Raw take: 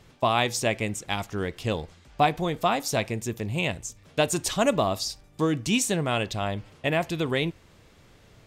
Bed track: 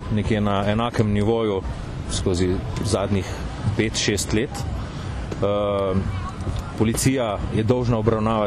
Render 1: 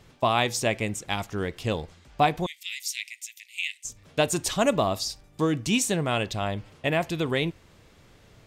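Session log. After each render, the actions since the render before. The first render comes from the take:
0:02.46–0:03.85: Chebyshev high-pass filter 2,000 Hz, order 6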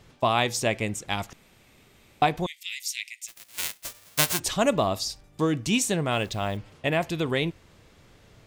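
0:01.33–0:02.22: fill with room tone
0:03.27–0:04.38: spectral envelope flattened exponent 0.1
0:06.12–0:06.57: hold until the input has moved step −48 dBFS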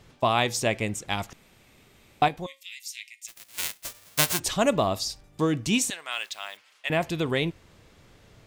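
0:02.28–0:03.25: tuned comb filter 270 Hz, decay 0.24 s
0:05.90–0:06.90: high-pass filter 1,500 Hz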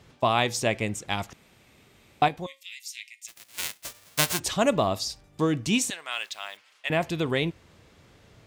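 high-pass filter 45 Hz
high-shelf EQ 9,900 Hz −4 dB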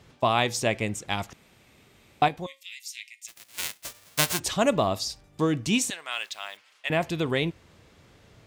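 no processing that can be heard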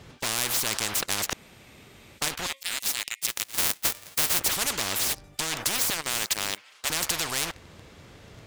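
leveller curve on the samples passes 3
every bin compressed towards the loudest bin 10 to 1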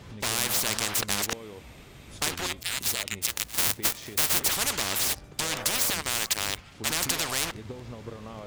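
mix in bed track −21.5 dB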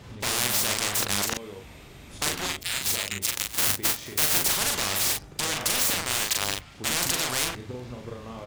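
double-tracking delay 40 ms −3 dB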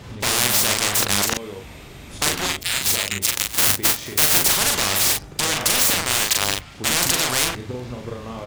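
level +6.5 dB
brickwall limiter −1 dBFS, peak gain reduction 1.5 dB

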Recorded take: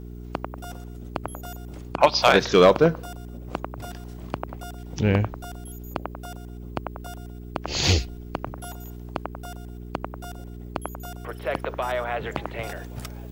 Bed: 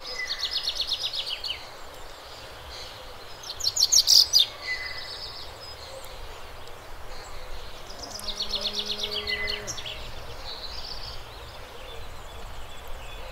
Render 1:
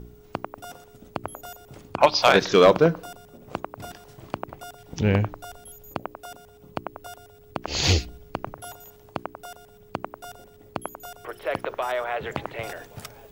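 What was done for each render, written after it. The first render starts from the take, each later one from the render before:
hum removal 60 Hz, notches 6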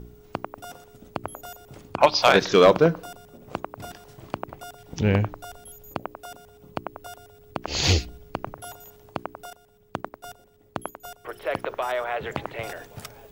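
0:09.50–0:11.26: noise gate −43 dBFS, range −8 dB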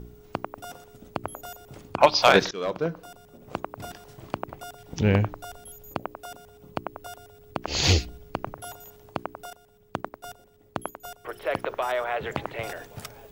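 0:02.51–0:03.66: fade in, from −23 dB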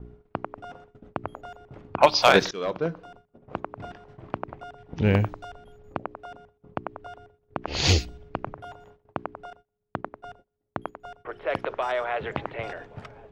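noise gate −48 dBFS, range −22 dB
low-pass that shuts in the quiet parts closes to 1,700 Hz, open at −17 dBFS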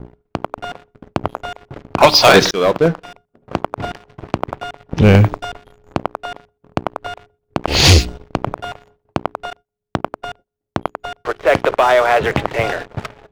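leveller curve on the samples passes 3
automatic gain control gain up to 7 dB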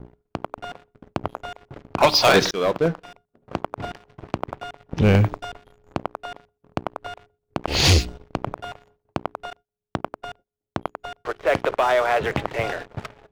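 level −7 dB

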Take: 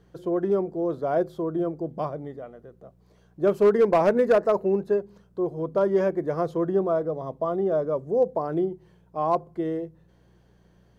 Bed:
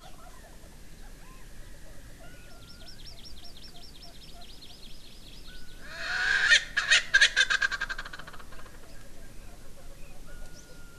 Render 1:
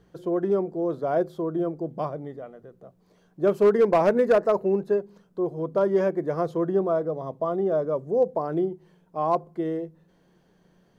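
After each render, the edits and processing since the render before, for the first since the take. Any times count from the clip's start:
hum removal 60 Hz, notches 2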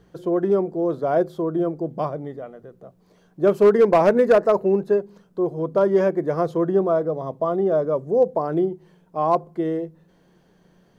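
level +4 dB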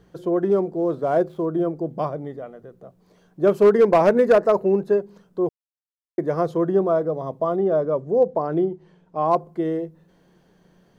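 0:00.49–0:01.46: running median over 9 samples
0:05.49–0:06.18: silence
0:07.56–0:09.31: high-frequency loss of the air 69 metres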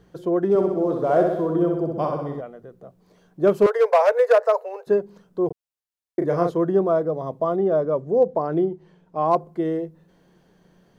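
0:00.49–0:02.41: flutter between parallel walls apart 10.8 metres, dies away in 0.87 s
0:03.66–0:04.87: Butterworth high-pass 450 Hz 96 dB per octave
0:05.47–0:06.52: double-tracking delay 35 ms −4 dB

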